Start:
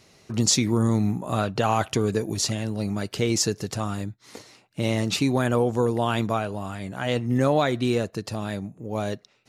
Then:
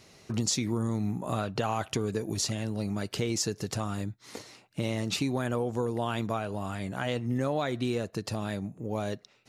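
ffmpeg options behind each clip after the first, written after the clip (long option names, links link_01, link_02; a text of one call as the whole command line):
ffmpeg -i in.wav -af "acompressor=threshold=-29dB:ratio=2.5" out.wav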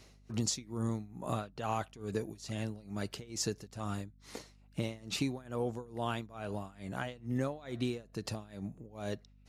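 ffmpeg -i in.wav -af "tremolo=f=2.3:d=0.92,aeval=exprs='val(0)+0.00141*(sin(2*PI*50*n/s)+sin(2*PI*2*50*n/s)/2+sin(2*PI*3*50*n/s)/3+sin(2*PI*4*50*n/s)/4+sin(2*PI*5*50*n/s)/5)':channel_layout=same,volume=-3dB" out.wav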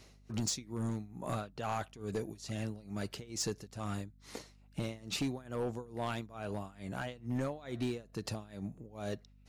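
ffmpeg -i in.wav -af "volume=28.5dB,asoftclip=hard,volume=-28.5dB" out.wav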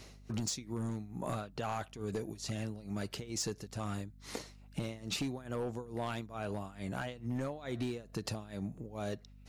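ffmpeg -i in.wav -af "acompressor=threshold=-41dB:ratio=3,volume=5.5dB" out.wav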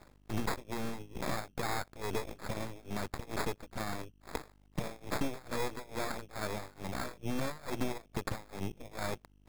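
ffmpeg -i in.wav -af "acrusher=samples=15:mix=1:aa=0.000001,aeval=exprs='0.0708*(cos(1*acos(clip(val(0)/0.0708,-1,1)))-cos(1*PI/2))+0.00316*(cos(3*acos(clip(val(0)/0.0708,-1,1)))-cos(3*PI/2))+0.00316*(cos(5*acos(clip(val(0)/0.0708,-1,1)))-cos(5*PI/2))+0.00794*(cos(7*acos(clip(val(0)/0.0708,-1,1)))-cos(7*PI/2))+0.0158*(cos(8*acos(clip(val(0)/0.0708,-1,1)))-cos(8*PI/2))':channel_layout=same,volume=1dB" out.wav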